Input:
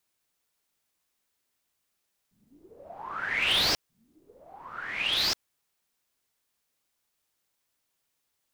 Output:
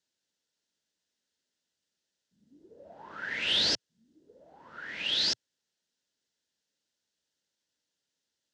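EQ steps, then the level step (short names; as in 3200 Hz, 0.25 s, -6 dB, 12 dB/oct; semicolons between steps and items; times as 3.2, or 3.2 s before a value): speaker cabinet 100–6800 Hz, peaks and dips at 120 Hz -9 dB, 380 Hz -3 dB, 750 Hz -10 dB, 1200 Hz -8 dB, 2300 Hz -10 dB; bell 1100 Hz -8.5 dB 0.37 oct; 0.0 dB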